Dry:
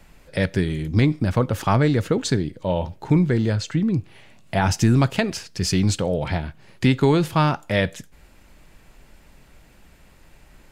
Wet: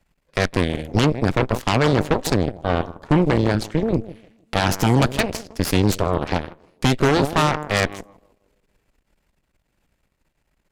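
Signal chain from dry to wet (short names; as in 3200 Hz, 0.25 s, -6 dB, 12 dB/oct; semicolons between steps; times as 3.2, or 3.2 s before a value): narrowing echo 0.158 s, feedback 58%, band-pass 360 Hz, level -8 dB; added harmonics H 4 -12 dB, 6 -8 dB, 7 -18 dB, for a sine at -5.5 dBFS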